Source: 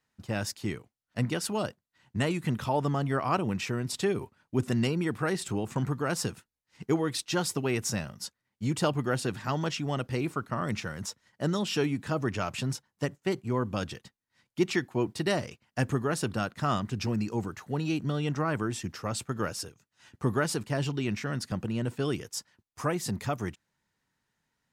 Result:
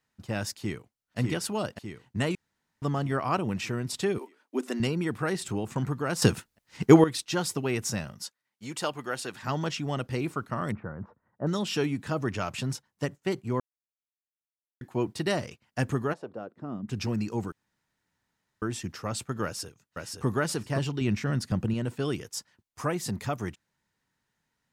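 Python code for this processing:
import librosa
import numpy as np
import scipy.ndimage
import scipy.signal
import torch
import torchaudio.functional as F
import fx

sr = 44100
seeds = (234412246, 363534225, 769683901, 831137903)

y = fx.echo_throw(x, sr, start_s=0.56, length_s=0.62, ms=600, feedback_pct=60, wet_db=-3.0)
y = fx.steep_highpass(y, sr, hz=240.0, slope=48, at=(4.18, 4.8))
y = fx.highpass(y, sr, hz=670.0, slope=6, at=(8.22, 9.43))
y = fx.lowpass(y, sr, hz=1300.0, slope=24, at=(10.72, 11.47))
y = fx.bandpass_q(y, sr, hz=fx.line((16.12, 750.0), (16.88, 210.0)), q=2.1, at=(16.12, 16.88), fade=0.02)
y = fx.echo_throw(y, sr, start_s=19.44, length_s=0.82, ms=520, feedback_pct=10, wet_db=-3.0)
y = fx.low_shelf(y, sr, hz=280.0, db=7.0, at=(21.01, 21.74))
y = fx.edit(y, sr, fx.room_tone_fill(start_s=2.35, length_s=0.47),
    fx.clip_gain(start_s=6.22, length_s=0.82, db=11.5),
    fx.silence(start_s=13.6, length_s=1.21),
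    fx.room_tone_fill(start_s=17.52, length_s=1.1), tone=tone)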